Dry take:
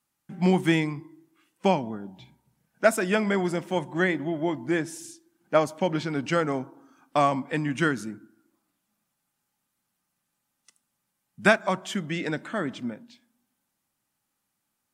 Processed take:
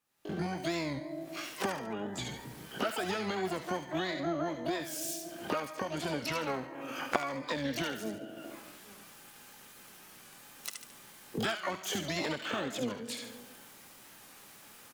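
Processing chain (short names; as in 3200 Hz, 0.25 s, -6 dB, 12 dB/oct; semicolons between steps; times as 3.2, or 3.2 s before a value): recorder AGC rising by 48 dB/s; in parallel at -8 dB: soft clip -7.5 dBFS, distortion -12 dB; on the sum: compressor 2:1, threshold -31 dBFS, peak gain reduction 16 dB; tone controls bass -5 dB, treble -3 dB; on a send: thin delay 72 ms, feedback 40%, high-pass 1400 Hz, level -5 dB; on the sum: harmoniser -12 st -16 dB, +12 st -2 dB; record warp 45 rpm, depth 100 cents; gain -8 dB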